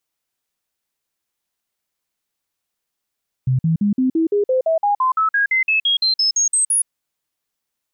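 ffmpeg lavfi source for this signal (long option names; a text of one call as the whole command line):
ffmpeg -f lavfi -i "aevalsrc='0.211*clip(min(mod(t,0.17),0.12-mod(t,0.17))/0.005,0,1)*sin(2*PI*129*pow(2,floor(t/0.17)/3)*mod(t,0.17))':duration=3.4:sample_rate=44100" out.wav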